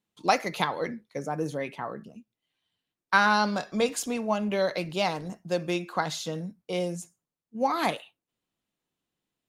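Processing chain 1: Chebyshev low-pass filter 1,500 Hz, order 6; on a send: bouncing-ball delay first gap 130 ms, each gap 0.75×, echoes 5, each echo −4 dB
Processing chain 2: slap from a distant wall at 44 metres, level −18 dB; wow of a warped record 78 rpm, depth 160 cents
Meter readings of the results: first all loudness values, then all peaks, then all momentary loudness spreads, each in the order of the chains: −28.0, −28.5 LKFS; −8.5, −7.0 dBFS; 12, 13 LU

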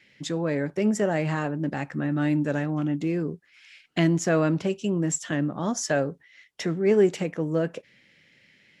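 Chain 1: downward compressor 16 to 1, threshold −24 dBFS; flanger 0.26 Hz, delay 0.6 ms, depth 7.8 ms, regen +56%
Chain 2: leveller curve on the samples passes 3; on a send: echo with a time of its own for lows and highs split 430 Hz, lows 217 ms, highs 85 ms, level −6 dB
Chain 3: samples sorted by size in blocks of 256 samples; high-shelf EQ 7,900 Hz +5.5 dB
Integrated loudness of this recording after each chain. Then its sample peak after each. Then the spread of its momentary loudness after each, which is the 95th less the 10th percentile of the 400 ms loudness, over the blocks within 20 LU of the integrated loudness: −34.0, −16.5, −25.5 LKFS; −17.5, −3.5, −6.0 dBFS; 7, 10, 9 LU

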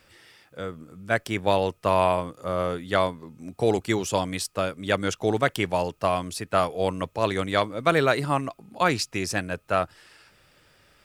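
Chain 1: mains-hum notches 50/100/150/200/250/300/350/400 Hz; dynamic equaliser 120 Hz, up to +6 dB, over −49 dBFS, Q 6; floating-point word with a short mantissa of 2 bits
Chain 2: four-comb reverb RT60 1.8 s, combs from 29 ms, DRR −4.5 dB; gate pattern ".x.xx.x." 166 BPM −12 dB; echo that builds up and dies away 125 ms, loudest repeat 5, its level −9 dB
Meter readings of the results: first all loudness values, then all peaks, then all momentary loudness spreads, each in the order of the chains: −25.5, −20.0 LKFS; −6.0, −3.0 dBFS; 8, 6 LU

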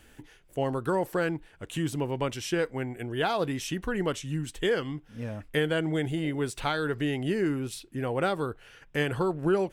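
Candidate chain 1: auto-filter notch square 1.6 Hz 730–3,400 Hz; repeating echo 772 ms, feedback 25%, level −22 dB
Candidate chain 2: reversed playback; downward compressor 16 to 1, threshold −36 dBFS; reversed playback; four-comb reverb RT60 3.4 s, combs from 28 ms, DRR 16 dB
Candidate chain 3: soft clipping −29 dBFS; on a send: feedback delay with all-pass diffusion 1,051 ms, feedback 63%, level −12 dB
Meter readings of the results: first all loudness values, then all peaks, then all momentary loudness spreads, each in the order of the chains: −31.0, −41.0, −34.5 LKFS; −15.0, −27.0, −24.5 dBFS; 8, 4, 6 LU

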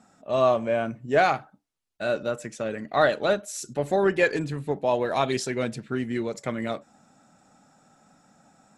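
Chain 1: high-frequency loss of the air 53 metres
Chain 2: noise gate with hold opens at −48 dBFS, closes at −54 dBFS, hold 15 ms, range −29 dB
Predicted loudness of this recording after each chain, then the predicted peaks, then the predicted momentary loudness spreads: −26.0, −26.0 LKFS; −8.0, −8.0 dBFS; 10, 10 LU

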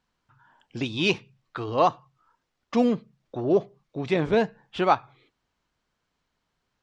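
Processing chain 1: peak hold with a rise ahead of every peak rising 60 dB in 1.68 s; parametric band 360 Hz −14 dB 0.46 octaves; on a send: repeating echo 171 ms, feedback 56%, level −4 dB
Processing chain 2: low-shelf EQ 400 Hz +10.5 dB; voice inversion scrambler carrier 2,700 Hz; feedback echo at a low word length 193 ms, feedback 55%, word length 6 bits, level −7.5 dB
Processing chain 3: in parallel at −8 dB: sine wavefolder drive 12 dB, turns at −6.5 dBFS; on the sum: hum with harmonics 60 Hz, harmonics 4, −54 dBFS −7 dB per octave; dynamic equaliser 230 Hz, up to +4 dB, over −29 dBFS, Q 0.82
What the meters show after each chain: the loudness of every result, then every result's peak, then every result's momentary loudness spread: −22.0, −17.5, −16.5 LKFS; −4.0, −4.0, −5.5 dBFS; 15, 15, 11 LU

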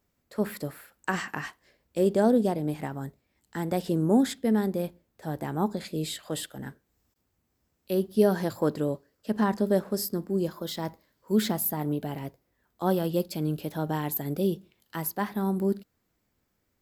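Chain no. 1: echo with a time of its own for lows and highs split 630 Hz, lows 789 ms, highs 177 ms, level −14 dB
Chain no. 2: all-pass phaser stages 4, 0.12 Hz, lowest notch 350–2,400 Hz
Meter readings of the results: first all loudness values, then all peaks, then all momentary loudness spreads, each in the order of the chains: −28.5, −30.0 LKFS; −9.5, −12.0 dBFS; 17, 16 LU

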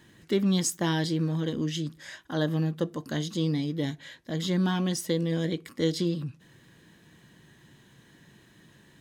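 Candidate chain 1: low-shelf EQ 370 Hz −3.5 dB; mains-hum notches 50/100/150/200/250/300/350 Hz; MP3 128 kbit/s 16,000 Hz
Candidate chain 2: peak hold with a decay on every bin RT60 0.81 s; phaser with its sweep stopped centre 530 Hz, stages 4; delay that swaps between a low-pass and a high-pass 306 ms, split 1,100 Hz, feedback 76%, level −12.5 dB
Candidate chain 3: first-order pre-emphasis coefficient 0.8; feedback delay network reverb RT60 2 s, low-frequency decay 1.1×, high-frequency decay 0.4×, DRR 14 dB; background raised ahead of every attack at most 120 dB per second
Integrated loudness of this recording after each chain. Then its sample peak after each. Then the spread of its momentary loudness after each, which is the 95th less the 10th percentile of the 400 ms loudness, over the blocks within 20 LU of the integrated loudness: −32.0, −31.0, −38.5 LKFS; −14.0, −13.5, −17.0 dBFS; 8, 18, 14 LU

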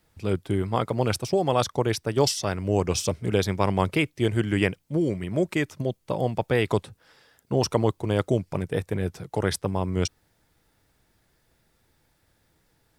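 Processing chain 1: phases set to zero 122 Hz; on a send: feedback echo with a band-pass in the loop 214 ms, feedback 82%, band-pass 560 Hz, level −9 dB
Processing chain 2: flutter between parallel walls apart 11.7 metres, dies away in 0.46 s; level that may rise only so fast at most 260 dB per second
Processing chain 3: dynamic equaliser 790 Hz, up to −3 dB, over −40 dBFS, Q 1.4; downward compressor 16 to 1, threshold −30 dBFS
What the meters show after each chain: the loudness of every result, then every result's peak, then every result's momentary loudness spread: −28.0, −26.0, −36.5 LKFS; −5.0, −5.5, −17.5 dBFS; 7, 7, 3 LU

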